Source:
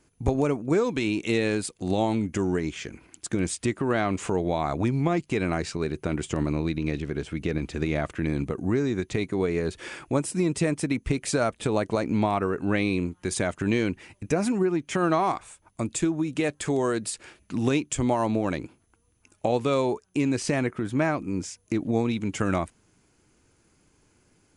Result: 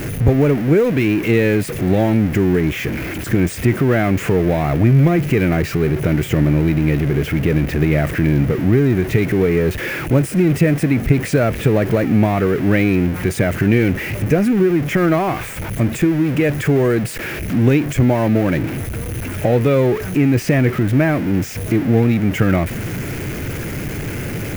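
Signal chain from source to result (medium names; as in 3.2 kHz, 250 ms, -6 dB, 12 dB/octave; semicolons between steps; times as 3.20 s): jump at every zero crossing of -25 dBFS; graphic EQ 125/500/1000/2000/4000/8000 Hz +8/+3/-8/+6/-8/-11 dB; trim +5 dB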